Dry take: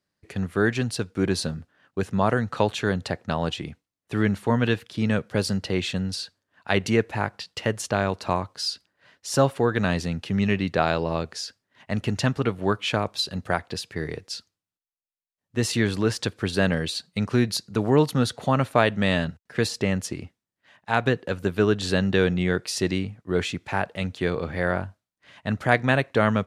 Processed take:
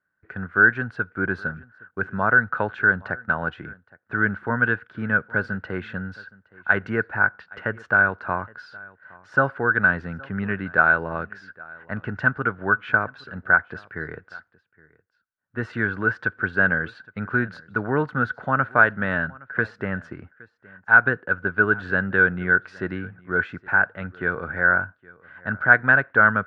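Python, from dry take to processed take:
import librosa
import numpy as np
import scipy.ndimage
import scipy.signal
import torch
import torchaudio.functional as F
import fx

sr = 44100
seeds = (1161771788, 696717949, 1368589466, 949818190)

p1 = fx.lowpass_res(x, sr, hz=1500.0, q=14.0)
p2 = p1 + fx.echo_single(p1, sr, ms=817, db=-23.5, dry=0)
y = p2 * librosa.db_to_amplitude(-5.0)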